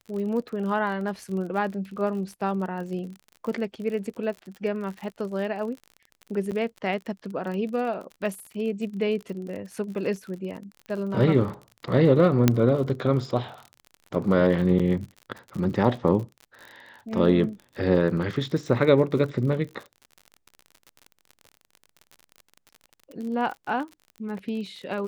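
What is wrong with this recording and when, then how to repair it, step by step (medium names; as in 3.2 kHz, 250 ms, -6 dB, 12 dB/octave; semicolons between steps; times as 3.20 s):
crackle 47 per s -34 dBFS
6.51–6.52 s: dropout 8.2 ms
12.48 s: pop -4 dBFS
14.79–14.80 s: dropout 5.9 ms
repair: de-click; interpolate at 6.51 s, 8.2 ms; interpolate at 14.79 s, 5.9 ms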